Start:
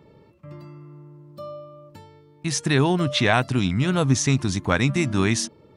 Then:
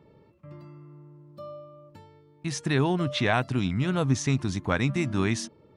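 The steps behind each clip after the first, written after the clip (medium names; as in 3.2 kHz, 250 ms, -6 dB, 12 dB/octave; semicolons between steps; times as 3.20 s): treble shelf 4.7 kHz -7 dB; trim -4.5 dB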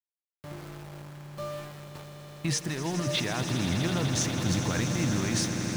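compressor with a negative ratio -30 dBFS, ratio -1; small samples zeroed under -39.5 dBFS; on a send: echo with a slow build-up 82 ms, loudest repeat 8, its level -12 dB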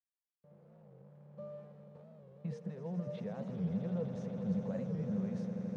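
fade-in on the opening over 1.37 s; two resonant band-passes 310 Hz, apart 1.3 oct; warped record 45 rpm, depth 160 cents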